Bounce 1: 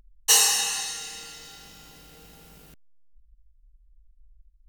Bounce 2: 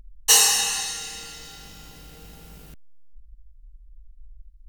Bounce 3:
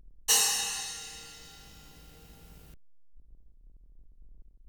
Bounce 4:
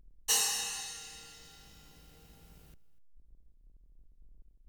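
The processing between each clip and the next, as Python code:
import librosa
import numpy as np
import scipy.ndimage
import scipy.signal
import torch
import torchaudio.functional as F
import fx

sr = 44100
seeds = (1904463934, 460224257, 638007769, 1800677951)

y1 = fx.low_shelf(x, sr, hz=130.0, db=8.0)
y1 = y1 * 10.0 ** (2.5 / 20.0)
y2 = fx.octave_divider(y1, sr, octaves=1, level_db=-5.0)
y2 = y2 * 10.0 ** (-8.5 / 20.0)
y3 = y2 + 10.0 ** (-20.5 / 20.0) * np.pad(y2, (int(246 * sr / 1000.0), 0))[:len(y2)]
y3 = y3 * 10.0 ** (-4.5 / 20.0)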